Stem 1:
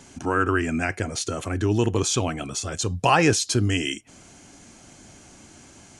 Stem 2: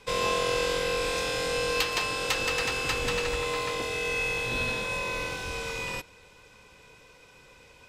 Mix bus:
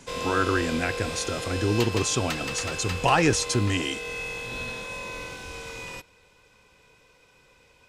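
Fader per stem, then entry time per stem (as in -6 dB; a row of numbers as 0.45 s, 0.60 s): -2.5 dB, -4.5 dB; 0.00 s, 0.00 s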